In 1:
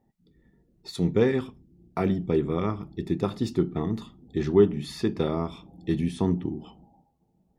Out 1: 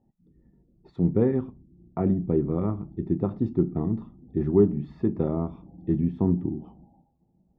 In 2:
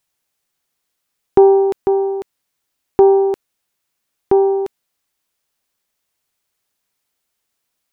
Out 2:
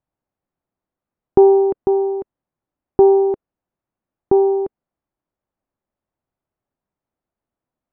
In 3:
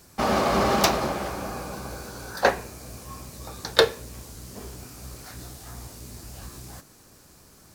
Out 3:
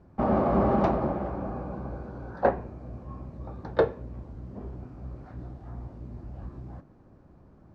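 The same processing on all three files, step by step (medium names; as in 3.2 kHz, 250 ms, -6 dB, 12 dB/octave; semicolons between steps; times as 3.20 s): Bessel low-pass 600 Hz, order 2; peaking EQ 440 Hz -5.5 dB 0.26 oct; trim +2.5 dB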